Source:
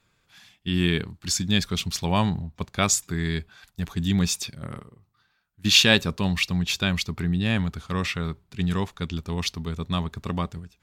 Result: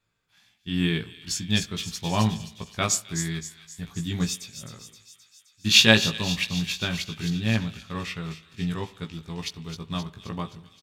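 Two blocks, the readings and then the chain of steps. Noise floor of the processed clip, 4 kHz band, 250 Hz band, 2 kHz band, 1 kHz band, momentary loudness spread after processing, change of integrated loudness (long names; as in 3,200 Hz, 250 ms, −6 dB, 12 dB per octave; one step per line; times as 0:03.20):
−65 dBFS, 0.0 dB, −2.5 dB, 0.0 dB, −2.5 dB, 18 LU, −0.5 dB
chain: double-tracking delay 18 ms −4 dB
delay with a high-pass on its return 262 ms, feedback 65%, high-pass 3,100 Hz, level −6 dB
spring reverb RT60 1.1 s, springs 37/44 ms, chirp 70 ms, DRR 13.5 dB
expander for the loud parts 1.5 to 1, over −33 dBFS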